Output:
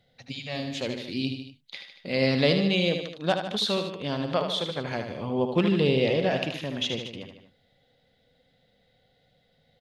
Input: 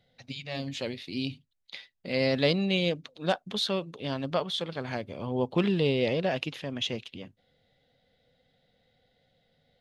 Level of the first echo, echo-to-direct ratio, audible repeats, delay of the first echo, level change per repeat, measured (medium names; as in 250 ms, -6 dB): -7.0 dB, -5.5 dB, 3, 76 ms, -4.5 dB